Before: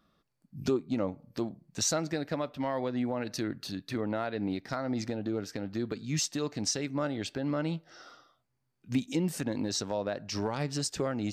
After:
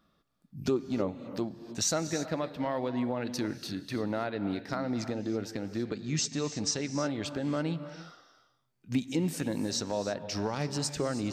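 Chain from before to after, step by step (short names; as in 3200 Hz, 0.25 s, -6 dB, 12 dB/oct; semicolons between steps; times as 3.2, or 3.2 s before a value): 5.75–6.95 steep low-pass 8400 Hz 48 dB/oct; non-linear reverb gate 0.35 s rising, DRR 11 dB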